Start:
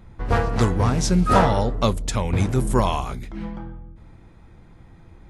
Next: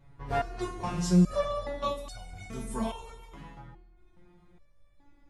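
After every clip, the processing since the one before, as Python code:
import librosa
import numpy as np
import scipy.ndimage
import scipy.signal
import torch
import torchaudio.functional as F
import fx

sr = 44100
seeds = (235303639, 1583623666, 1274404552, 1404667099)

y = fx.rev_gated(x, sr, seeds[0], gate_ms=500, shape='falling', drr_db=6.5)
y = fx.resonator_held(y, sr, hz=2.4, low_hz=140.0, high_hz=730.0)
y = y * librosa.db_to_amplitude(2.0)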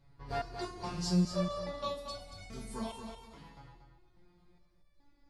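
y = fx.peak_eq(x, sr, hz=4600.0, db=14.0, octaves=0.4)
y = fx.echo_feedback(y, sr, ms=233, feedback_pct=23, wet_db=-7.5)
y = y * librosa.db_to_amplitude(-7.0)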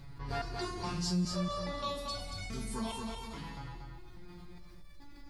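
y = fx.peak_eq(x, sr, hz=590.0, db=-6.0, octaves=1.0)
y = fx.env_flatten(y, sr, amount_pct=50)
y = y * librosa.db_to_amplitude(-4.0)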